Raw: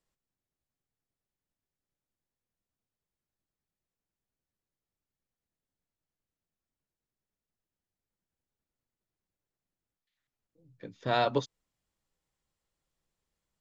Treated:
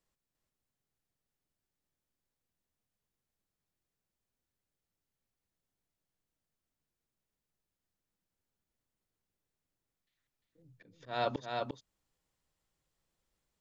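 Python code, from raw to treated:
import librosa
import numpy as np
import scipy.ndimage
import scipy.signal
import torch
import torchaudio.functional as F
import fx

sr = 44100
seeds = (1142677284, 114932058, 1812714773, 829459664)

y = fx.auto_swell(x, sr, attack_ms=309.0)
y = y + 10.0 ** (-3.5 / 20.0) * np.pad(y, (int(349 * sr / 1000.0), 0))[:len(y)]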